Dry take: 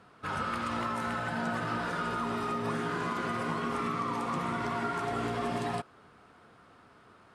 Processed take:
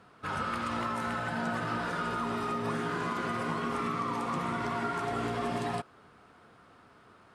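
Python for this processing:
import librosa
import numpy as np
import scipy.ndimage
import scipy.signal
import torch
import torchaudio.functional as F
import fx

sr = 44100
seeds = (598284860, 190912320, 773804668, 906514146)

y = fx.dmg_crackle(x, sr, seeds[0], per_s=70.0, level_db=-55.0, at=(2.04, 4.5), fade=0.02)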